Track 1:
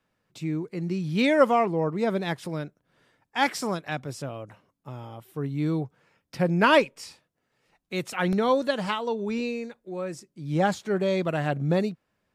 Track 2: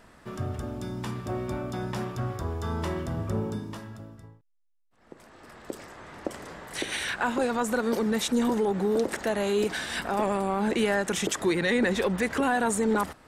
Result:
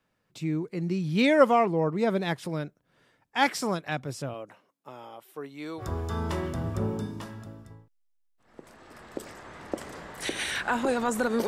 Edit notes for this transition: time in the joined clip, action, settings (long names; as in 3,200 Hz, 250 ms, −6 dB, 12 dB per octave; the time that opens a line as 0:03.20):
track 1
0:04.33–0:05.85: high-pass filter 230 Hz → 640 Hz
0:05.81: continue with track 2 from 0:02.34, crossfade 0.08 s